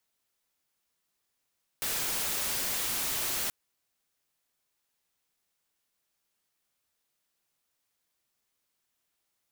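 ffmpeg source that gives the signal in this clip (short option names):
-f lavfi -i "anoisesrc=c=white:a=0.0461:d=1.68:r=44100:seed=1"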